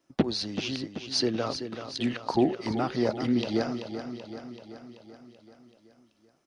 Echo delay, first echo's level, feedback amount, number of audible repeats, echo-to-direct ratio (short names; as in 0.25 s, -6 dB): 0.383 s, -9.5 dB, 60%, 6, -7.5 dB